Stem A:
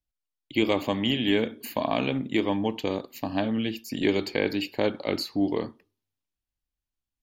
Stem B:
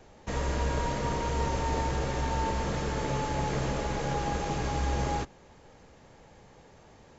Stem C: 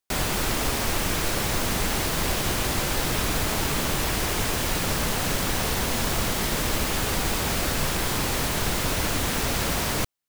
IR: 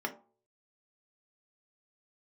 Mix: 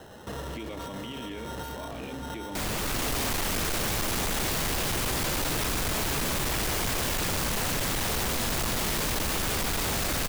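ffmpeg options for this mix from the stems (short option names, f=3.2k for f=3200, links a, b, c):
-filter_complex "[0:a]volume=-9.5dB[a];[1:a]highpass=75,acompressor=threshold=-37dB:ratio=6,acrusher=samples=19:mix=1:aa=0.000001,volume=2dB[b];[2:a]dynaudnorm=f=360:g=3:m=11.5dB,adelay=2450,volume=-4.5dB[c];[a][b]amix=inputs=2:normalize=0,acontrast=49,alimiter=level_in=5.5dB:limit=-24dB:level=0:latency=1:release=27,volume=-5.5dB,volume=0dB[d];[c][d]amix=inputs=2:normalize=0,asoftclip=type=hard:threshold=-27dB"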